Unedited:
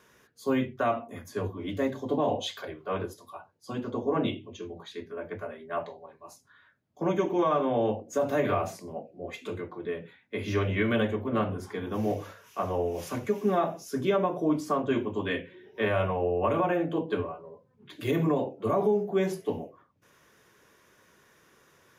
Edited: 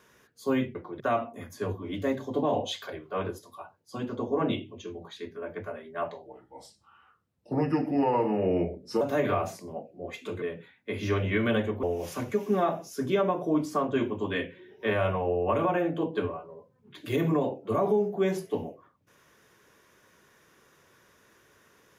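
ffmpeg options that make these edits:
-filter_complex "[0:a]asplit=7[a][b][c][d][e][f][g];[a]atrim=end=0.752[h];[b]atrim=start=9.618:end=9.872[i];[c]atrim=start=0.748:end=6.014[j];[d]atrim=start=6.01:end=8.21,asetpts=PTS-STARTPTS,asetrate=35280,aresample=44100[k];[e]atrim=start=8.206:end=9.622[l];[f]atrim=start=9.868:end=11.282[m];[g]atrim=start=12.778[n];[h][i]acrossfade=d=0.004:c1=hsin:c2=hsin[o];[o][j]acrossfade=d=0.004:c1=hsin:c2=hsin[p];[p][k]acrossfade=d=0.004:c1=hsin:c2=hsin[q];[q][l]acrossfade=d=0.004:c1=hsin:c2=hsin[r];[r][m]acrossfade=d=0.004:c1=hsin:c2=hsin[s];[s][n]acrossfade=d=0.004:c1=hsin:c2=hsin"

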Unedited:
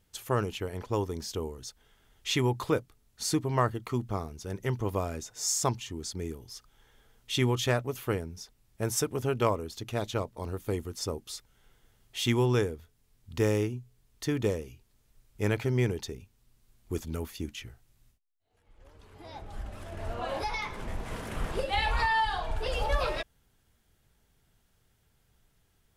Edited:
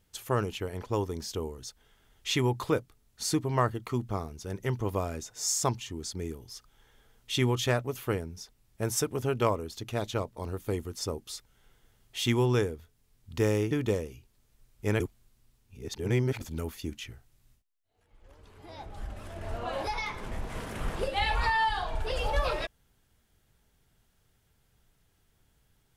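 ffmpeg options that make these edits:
-filter_complex "[0:a]asplit=4[a][b][c][d];[a]atrim=end=13.712[e];[b]atrim=start=14.268:end=15.562[f];[c]atrim=start=15.558:end=16.972,asetpts=PTS-STARTPTS,areverse[g];[d]atrim=start=16.968[h];[e][f]acrossfade=d=0.004:c1=hsin:c2=hsin[i];[i][g]acrossfade=d=0.004:c1=hsin:c2=hsin[j];[j][h]acrossfade=d=0.004:c1=hsin:c2=hsin"

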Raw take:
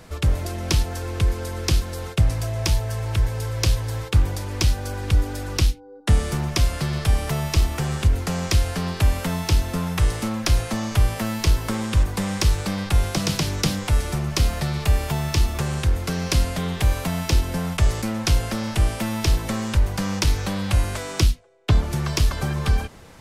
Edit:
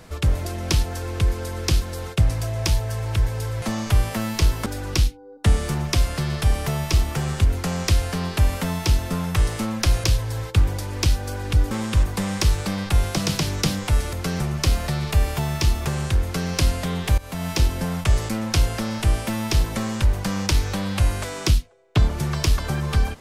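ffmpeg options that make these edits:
-filter_complex "[0:a]asplit=8[a][b][c][d][e][f][g][h];[a]atrim=end=3.622[i];[b]atrim=start=10.668:end=11.712[j];[c]atrim=start=5.288:end=10.672[k];[d]atrim=start=3.618:end=5.292[l];[e]atrim=start=11.708:end=14.132[m];[f]atrim=start=15.958:end=16.232[n];[g]atrim=start=14.128:end=16.91,asetpts=PTS-STARTPTS,afade=t=out:st=2.778:d=0.004:c=hsin:silence=0.11885[o];[h]atrim=start=16.91,asetpts=PTS-STARTPTS,afade=t=in:d=0.33:silence=0.11885[p];[i][j]acrossfade=d=0.004:c1=hsin:c2=hsin[q];[q][k]acrossfade=d=0.004:c1=hsin:c2=hsin[r];[r][l]acrossfade=d=0.004:c1=hsin:c2=hsin[s];[s][m]acrossfade=d=0.004:c1=hsin:c2=hsin[t];[t][n]acrossfade=d=0.004:c1=hsin:c2=hsin[u];[o][p]concat=n=2:v=0:a=1[v];[u][v]acrossfade=d=0.004:c1=hsin:c2=hsin"

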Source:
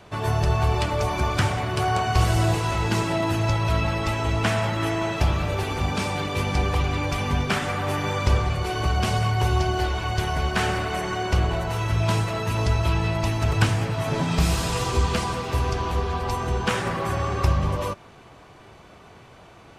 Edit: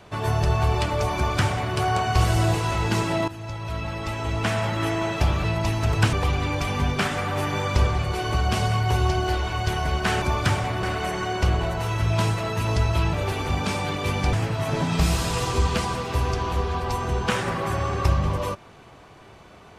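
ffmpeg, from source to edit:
-filter_complex "[0:a]asplit=8[a][b][c][d][e][f][g][h];[a]atrim=end=3.28,asetpts=PTS-STARTPTS,afade=t=out:st=3.276:d=0.004:c=hsin:silence=0.16788[i];[b]atrim=start=3.28:end=5.442,asetpts=PTS-STARTPTS,afade=t=in:d=1.53:silence=0.16788[j];[c]atrim=start=13.028:end=13.722[k];[d]atrim=start=6.638:end=10.732[l];[e]atrim=start=1.148:end=1.762[m];[f]atrim=start=10.728:end=13.032[n];[g]atrim=start=5.438:end=6.642[o];[h]atrim=start=13.718[p];[i][j]concat=n=2:v=0:a=1[q];[q][k]acrossfade=d=0.004:c1=hsin:c2=hsin[r];[r][l]acrossfade=d=0.004:c1=hsin:c2=hsin[s];[s][m]acrossfade=d=0.004:c1=hsin:c2=hsin[t];[t][n]acrossfade=d=0.004:c1=hsin:c2=hsin[u];[u][o]acrossfade=d=0.004:c1=hsin:c2=hsin[v];[v][p]acrossfade=d=0.004:c1=hsin:c2=hsin"

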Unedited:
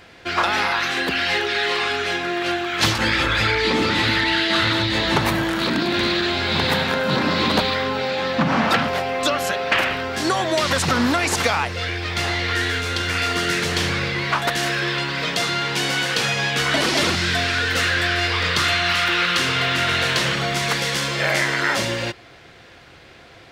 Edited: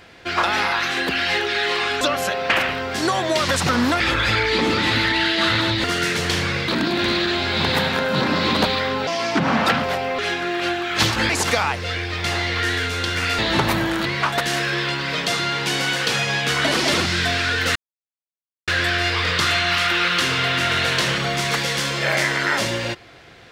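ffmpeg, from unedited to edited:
-filter_complex "[0:a]asplit=12[a][b][c][d][e][f][g][h][i][j][k][l];[a]atrim=end=2.012[m];[b]atrim=start=9.228:end=11.222[n];[c]atrim=start=3.118:end=4.962[o];[d]atrim=start=13.308:end=14.152[p];[e]atrim=start=5.628:end=8.024[q];[f]atrim=start=8.02:end=8.44,asetpts=PTS-STARTPTS,asetrate=56889,aresample=44100,atrim=end_sample=14358,asetpts=PTS-STARTPTS[r];[g]atrim=start=8.436:end=9.232[s];[h]atrim=start=2.008:end=3.122[t];[i]atrim=start=11.218:end=13.312[u];[j]atrim=start=4.958:end=5.632[v];[k]atrim=start=14.148:end=17.85,asetpts=PTS-STARTPTS,afade=t=out:st=3.698:d=0.004:c=hsin,apad=pad_dur=0.92[w];[l]atrim=start=17.85,asetpts=PTS-STARTPTS,afade=t=in:d=0.004:c=hsin[x];[m][n]acrossfade=d=0.004:c1=hsin:c2=hsin[y];[y][o]acrossfade=d=0.004:c1=hsin:c2=hsin[z];[z][p]acrossfade=d=0.004:c1=hsin:c2=hsin[aa];[aa][q]acrossfade=d=0.004:c1=hsin:c2=hsin[ab];[ab][r]acrossfade=d=0.004:c1=hsin:c2=hsin[ac];[ac][s]acrossfade=d=0.004:c1=hsin:c2=hsin[ad];[ad][t]acrossfade=d=0.004:c1=hsin:c2=hsin[ae];[ae][u]acrossfade=d=0.004:c1=hsin:c2=hsin[af];[af][v]acrossfade=d=0.004:c1=hsin:c2=hsin[ag];[w][x]concat=n=2:v=0:a=1[ah];[ag][ah]acrossfade=d=0.004:c1=hsin:c2=hsin"

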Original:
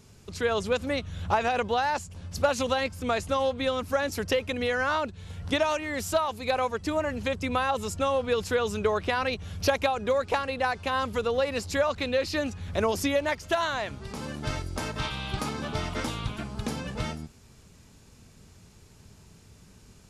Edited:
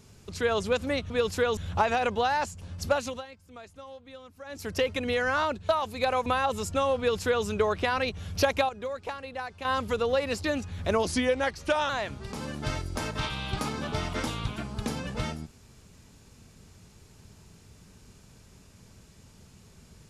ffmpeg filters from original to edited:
-filter_complex "[0:a]asplit=12[a][b][c][d][e][f][g][h][i][j][k][l];[a]atrim=end=1.102[m];[b]atrim=start=8.228:end=8.702[n];[c]atrim=start=1.098:end=2.79,asetpts=PTS-STARTPTS,afade=t=out:st=1.272:d=0.42:silence=0.112202[o];[d]atrim=start=2.79:end=3.97,asetpts=PTS-STARTPTS,volume=-19dB[p];[e]atrim=start=3.97:end=5.222,asetpts=PTS-STARTPTS,afade=t=in:d=0.42:silence=0.112202[q];[f]atrim=start=6.148:end=6.722[r];[g]atrim=start=7.508:end=9.942[s];[h]atrim=start=9.938:end=10.902,asetpts=PTS-STARTPTS,volume=-9dB[t];[i]atrim=start=10.898:end=11.692[u];[j]atrim=start=12.328:end=12.944[v];[k]atrim=start=12.94:end=13.7,asetpts=PTS-STARTPTS,asetrate=39690,aresample=44100[w];[l]atrim=start=13.696[x];[m][n]acrossfade=d=0.004:c1=hsin:c2=hsin[y];[o][p][q]concat=n=3:v=0:a=1[z];[y][z]acrossfade=d=0.004:c1=hsin:c2=hsin[aa];[aa][r]acrossfade=d=0.004:c1=hsin:c2=hsin[ab];[ab][s]acrossfade=d=0.004:c1=hsin:c2=hsin[ac];[ac][t]acrossfade=d=0.004:c1=hsin:c2=hsin[ad];[ad][u]acrossfade=d=0.004:c1=hsin:c2=hsin[ae];[ae][v]acrossfade=d=0.004:c1=hsin:c2=hsin[af];[af][w]acrossfade=d=0.004:c1=hsin:c2=hsin[ag];[ag][x]acrossfade=d=0.004:c1=hsin:c2=hsin"

